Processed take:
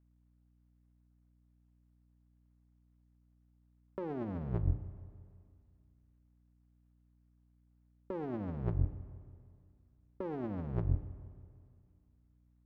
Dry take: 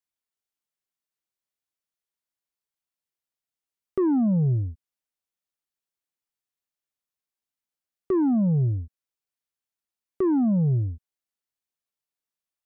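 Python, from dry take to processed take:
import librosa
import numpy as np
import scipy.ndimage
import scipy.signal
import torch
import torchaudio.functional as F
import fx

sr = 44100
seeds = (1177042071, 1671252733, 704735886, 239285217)

y = fx.cycle_switch(x, sr, every=2, mode='muted')
y = scipy.signal.sosfilt(scipy.signal.butter(2, 1300.0, 'lowpass', fs=sr, output='sos'), y)
y = fx.hum_notches(y, sr, base_hz=60, count=5)
y = fx.over_compress(y, sr, threshold_db=-36.0, ratio=-1.0)
y = fx.rev_spring(y, sr, rt60_s=2.2, pass_ms=(33, 47), chirp_ms=50, drr_db=12.5)
y = fx.add_hum(y, sr, base_hz=60, snr_db=27)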